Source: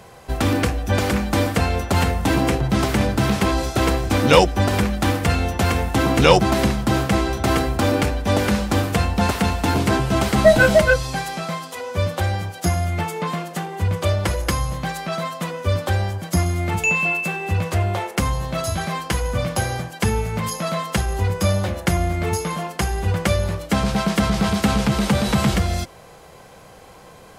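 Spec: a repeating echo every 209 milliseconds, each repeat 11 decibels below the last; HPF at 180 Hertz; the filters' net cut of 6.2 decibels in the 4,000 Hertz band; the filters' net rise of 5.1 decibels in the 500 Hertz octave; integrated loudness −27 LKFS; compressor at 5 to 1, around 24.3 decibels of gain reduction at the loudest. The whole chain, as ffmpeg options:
ffmpeg -i in.wav -af "highpass=180,equalizer=frequency=500:width_type=o:gain=6.5,equalizer=frequency=4000:width_type=o:gain=-8.5,acompressor=threshold=-33dB:ratio=5,aecho=1:1:209|418|627:0.282|0.0789|0.0221,volume=8dB" out.wav

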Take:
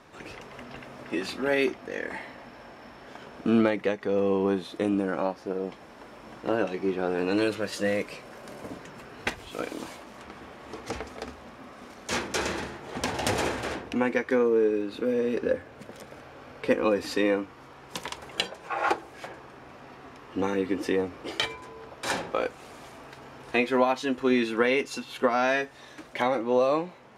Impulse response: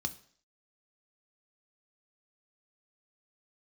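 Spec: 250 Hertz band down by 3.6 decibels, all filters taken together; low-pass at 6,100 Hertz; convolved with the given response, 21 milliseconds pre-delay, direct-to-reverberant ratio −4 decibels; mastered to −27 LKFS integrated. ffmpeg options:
-filter_complex "[0:a]lowpass=6100,equalizer=frequency=250:width_type=o:gain=-4.5,asplit=2[link_01][link_02];[1:a]atrim=start_sample=2205,adelay=21[link_03];[link_02][link_03]afir=irnorm=-1:irlink=0,volume=2.5dB[link_04];[link_01][link_04]amix=inputs=2:normalize=0,volume=-3dB"

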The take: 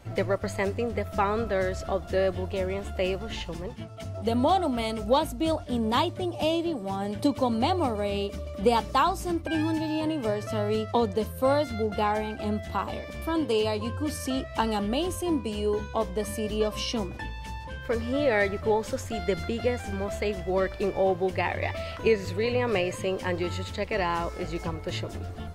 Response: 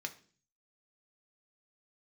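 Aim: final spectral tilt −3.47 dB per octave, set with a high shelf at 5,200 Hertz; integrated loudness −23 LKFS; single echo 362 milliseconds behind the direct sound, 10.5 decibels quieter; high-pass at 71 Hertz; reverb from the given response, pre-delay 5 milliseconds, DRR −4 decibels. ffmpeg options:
-filter_complex "[0:a]highpass=71,highshelf=frequency=5200:gain=6,aecho=1:1:362:0.299,asplit=2[link_01][link_02];[1:a]atrim=start_sample=2205,adelay=5[link_03];[link_02][link_03]afir=irnorm=-1:irlink=0,volume=4dB[link_04];[link_01][link_04]amix=inputs=2:normalize=0"

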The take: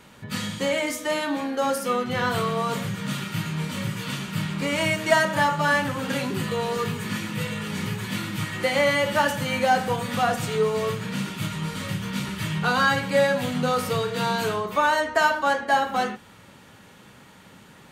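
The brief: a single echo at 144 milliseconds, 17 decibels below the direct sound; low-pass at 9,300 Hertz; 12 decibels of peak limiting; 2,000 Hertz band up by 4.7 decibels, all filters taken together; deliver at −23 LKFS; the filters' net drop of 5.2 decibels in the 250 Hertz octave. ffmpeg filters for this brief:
ffmpeg -i in.wav -af "lowpass=9300,equalizer=frequency=250:width_type=o:gain=-7.5,equalizer=frequency=2000:width_type=o:gain=6,alimiter=limit=-16.5dB:level=0:latency=1,aecho=1:1:144:0.141,volume=3.5dB" out.wav

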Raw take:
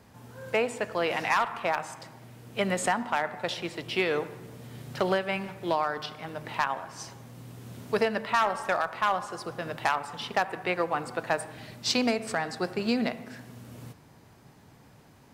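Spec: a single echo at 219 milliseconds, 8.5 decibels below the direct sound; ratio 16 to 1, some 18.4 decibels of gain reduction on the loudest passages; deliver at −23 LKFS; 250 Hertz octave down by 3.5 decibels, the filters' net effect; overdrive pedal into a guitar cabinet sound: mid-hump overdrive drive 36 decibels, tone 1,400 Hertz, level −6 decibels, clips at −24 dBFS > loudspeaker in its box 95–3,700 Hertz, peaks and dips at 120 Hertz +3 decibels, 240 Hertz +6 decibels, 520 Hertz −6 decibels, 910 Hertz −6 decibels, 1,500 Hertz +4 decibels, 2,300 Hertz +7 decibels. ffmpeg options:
ffmpeg -i in.wav -filter_complex "[0:a]equalizer=frequency=250:width_type=o:gain=-8.5,acompressor=threshold=-40dB:ratio=16,aecho=1:1:219:0.376,asplit=2[link_01][link_02];[link_02]highpass=frequency=720:poles=1,volume=36dB,asoftclip=type=tanh:threshold=-24dB[link_03];[link_01][link_03]amix=inputs=2:normalize=0,lowpass=frequency=1400:poles=1,volume=-6dB,highpass=95,equalizer=frequency=120:width_type=q:width=4:gain=3,equalizer=frequency=240:width_type=q:width=4:gain=6,equalizer=frequency=520:width_type=q:width=4:gain=-6,equalizer=frequency=910:width_type=q:width=4:gain=-6,equalizer=frequency=1500:width_type=q:width=4:gain=4,equalizer=frequency=2300:width_type=q:width=4:gain=7,lowpass=frequency=3700:width=0.5412,lowpass=frequency=3700:width=1.3066,volume=10.5dB" out.wav

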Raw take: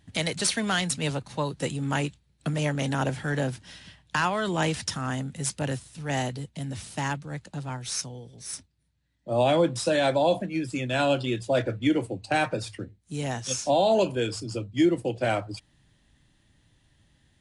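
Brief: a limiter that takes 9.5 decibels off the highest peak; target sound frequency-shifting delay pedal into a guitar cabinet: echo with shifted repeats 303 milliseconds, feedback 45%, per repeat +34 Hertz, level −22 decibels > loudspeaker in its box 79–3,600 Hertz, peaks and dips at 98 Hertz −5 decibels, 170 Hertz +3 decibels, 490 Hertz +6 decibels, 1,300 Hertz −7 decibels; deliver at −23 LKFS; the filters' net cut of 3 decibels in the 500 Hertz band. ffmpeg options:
ffmpeg -i in.wav -filter_complex "[0:a]equalizer=frequency=500:width_type=o:gain=-7,alimiter=limit=-22dB:level=0:latency=1,asplit=4[link_01][link_02][link_03][link_04];[link_02]adelay=303,afreqshift=34,volume=-22dB[link_05];[link_03]adelay=606,afreqshift=68,volume=-28.9dB[link_06];[link_04]adelay=909,afreqshift=102,volume=-35.9dB[link_07];[link_01][link_05][link_06][link_07]amix=inputs=4:normalize=0,highpass=79,equalizer=frequency=98:width_type=q:width=4:gain=-5,equalizer=frequency=170:width_type=q:width=4:gain=3,equalizer=frequency=490:width_type=q:width=4:gain=6,equalizer=frequency=1300:width_type=q:width=4:gain=-7,lowpass=frequency=3600:width=0.5412,lowpass=frequency=3600:width=1.3066,volume=10dB" out.wav

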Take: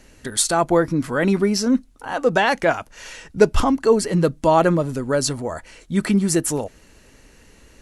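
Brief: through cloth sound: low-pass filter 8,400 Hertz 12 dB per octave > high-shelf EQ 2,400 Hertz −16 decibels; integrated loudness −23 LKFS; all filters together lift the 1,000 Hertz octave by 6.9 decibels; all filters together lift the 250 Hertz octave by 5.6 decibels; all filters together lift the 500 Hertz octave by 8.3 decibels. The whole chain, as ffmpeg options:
ffmpeg -i in.wav -af "lowpass=8400,equalizer=frequency=250:width_type=o:gain=5,equalizer=frequency=500:width_type=o:gain=7.5,equalizer=frequency=1000:width_type=o:gain=8.5,highshelf=frequency=2400:gain=-16,volume=-9.5dB" out.wav

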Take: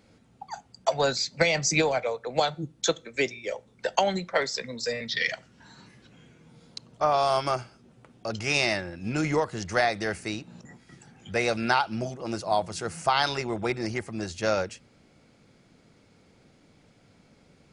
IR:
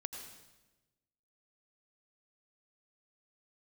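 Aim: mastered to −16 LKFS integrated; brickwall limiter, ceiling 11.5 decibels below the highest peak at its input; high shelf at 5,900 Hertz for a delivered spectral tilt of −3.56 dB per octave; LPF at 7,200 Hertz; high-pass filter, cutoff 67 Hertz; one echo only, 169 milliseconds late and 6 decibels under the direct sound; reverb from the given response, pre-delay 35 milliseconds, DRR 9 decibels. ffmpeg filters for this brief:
-filter_complex "[0:a]highpass=67,lowpass=7200,highshelf=frequency=5900:gain=5.5,alimiter=limit=-16.5dB:level=0:latency=1,aecho=1:1:169:0.501,asplit=2[link_01][link_02];[1:a]atrim=start_sample=2205,adelay=35[link_03];[link_02][link_03]afir=irnorm=-1:irlink=0,volume=-7.5dB[link_04];[link_01][link_04]amix=inputs=2:normalize=0,volume=12dB"

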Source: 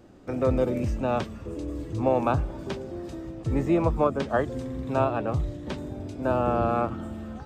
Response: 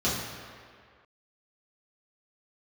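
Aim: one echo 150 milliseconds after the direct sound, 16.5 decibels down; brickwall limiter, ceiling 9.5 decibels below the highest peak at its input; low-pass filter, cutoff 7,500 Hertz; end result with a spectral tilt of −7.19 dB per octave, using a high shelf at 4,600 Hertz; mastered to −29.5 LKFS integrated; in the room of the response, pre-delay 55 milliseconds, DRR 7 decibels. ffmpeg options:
-filter_complex "[0:a]lowpass=7500,highshelf=frequency=4600:gain=-3.5,alimiter=limit=-20dB:level=0:latency=1,aecho=1:1:150:0.15,asplit=2[link_01][link_02];[1:a]atrim=start_sample=2205,adelay=55[link_03];[link_02][link_03]afir=irnorm=-1:irlink=0,volume=-19dB[link_04];[link_01][link_04]amix=inputs=2:normalize=0,volume=-1dB"

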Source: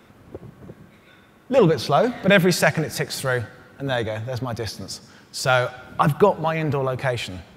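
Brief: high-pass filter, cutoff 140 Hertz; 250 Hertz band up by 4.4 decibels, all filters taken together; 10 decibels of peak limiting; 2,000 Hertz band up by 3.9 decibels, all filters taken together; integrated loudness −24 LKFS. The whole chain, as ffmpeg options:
ffmpeg -i in.wav -af "highpass=140,equalizer=frequency=250:width_type=o:gain=8,equalizer=frequency=2000:width_type=o:gain=5,volume=-2dB,alimiter=limit=-10.5dB:level=0:latency=1" out.wav

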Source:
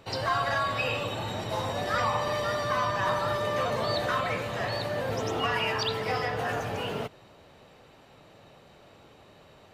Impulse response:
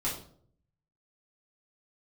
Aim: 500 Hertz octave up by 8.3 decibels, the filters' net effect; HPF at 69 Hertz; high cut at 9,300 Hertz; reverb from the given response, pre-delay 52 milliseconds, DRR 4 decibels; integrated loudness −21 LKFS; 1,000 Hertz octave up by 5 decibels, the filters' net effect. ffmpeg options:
-filter_complex "[0:a]highpass=69,lowpass=9300,equalizer=frequency=500:width_type=o:gain=9,equalizer=frequency=1000:width_type=o:gain=3.5,asplit=2[link_01][link_02];[1:a]atrim=start_sample=2205,adelay=52[link_03];[link_02][link_03]afir=irnorm=-1:irlink=0,volume=-9.5dB[link_04];[link_01][link_04]amix=inputs=2:normalize=0,volume=1dB"

